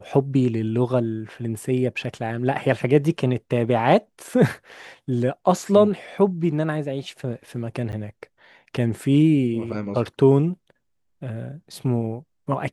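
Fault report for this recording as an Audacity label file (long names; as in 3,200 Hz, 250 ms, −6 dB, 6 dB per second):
7.920000	7.930000	drop-out 9.5 ms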